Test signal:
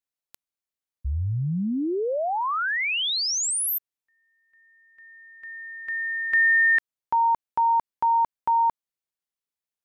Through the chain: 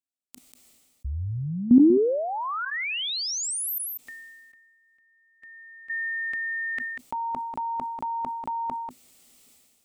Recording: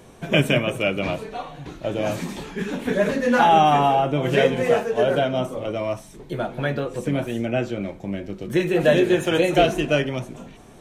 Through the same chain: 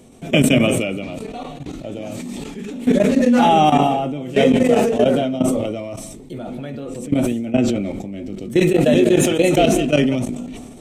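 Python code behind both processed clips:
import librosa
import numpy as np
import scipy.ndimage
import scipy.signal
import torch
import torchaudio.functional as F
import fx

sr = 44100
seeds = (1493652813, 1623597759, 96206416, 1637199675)

y = fx.graphic_eq_31(x, sr, hz=(250, 1000, 1600, 8000), db=(12, -8, -11, 7))
y = fx.level_steps(y, sr, step_db=17)
y = y + 10.0 ** (-23.0 / 20.0) * np.pad(y, (int(191 * sr / 1000.0), 0))[:len(y)]
y = fx.sustainer(y, sr, db_per_s=34.0)
y = y * librosa.db_to_amplitude(4.5)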